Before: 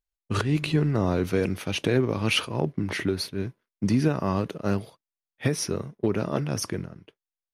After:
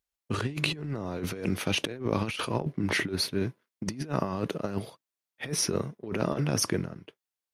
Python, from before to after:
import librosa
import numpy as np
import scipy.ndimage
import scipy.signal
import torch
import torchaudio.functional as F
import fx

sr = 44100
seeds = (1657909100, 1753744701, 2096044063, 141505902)

y = fx.highpass(x, sr, hz=120.0, slope=6)
y = fx.over_compress(y, sr, threshold_db=-29.0, ratio=-0.5)